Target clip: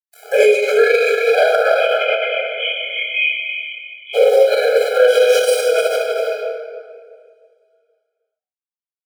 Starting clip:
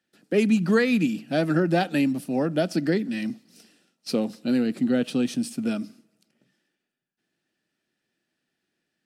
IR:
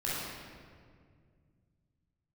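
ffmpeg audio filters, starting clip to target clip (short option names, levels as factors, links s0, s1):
-filter_complex "[0:a]agate=range=0.0891:threshold=0.00178:ratio=16:detection=peak,acompressor=mode=upward:threshold=0.0562:ratio=2.5,aeval=exprs='val(0)*gte(abs(val(0)),0.0126)':c=same,aphaser=in_gain=1:out_gain=1:delay=4.8:decay=0.26:speed=2:type=sinusoidal,asplit=3[s0][s1][s2];[s0]afade=t=out:st=1.6:d=0.02[s3];[s1]asuperpass=centerf=2500:order=20:qfactor=1.8,afade=t=in:st=1.6:d=0.02,afade=t=out:st=4.13:d=0.02[s4];[s2]afade=t=in:st=4.13:d=0.02[s5];[s3][s4][s5]amix=inputs=3:normalize=0,asplit=2[s6][s7];[s7]adelay=26,volume=0.794[s8];[s6][s8]amix=inputs=2:normalize=0,aecho=1:1:309:0.398[s9];[1:a]atrim=start_sample=2205[s10];[s9][s10]afir=irnorm=-1:irlink=0,alimiter=level_in=5.01:limit=0.891:release=50:level=0:latency=1,afftfilt=real='re*eq(mod(floor(b*sr/1024/420),2),1)':imag='im*eq(mod(floor(b*sr/1024/420),2),1)':win_size=1024:overlap=0.75,volume=1.26"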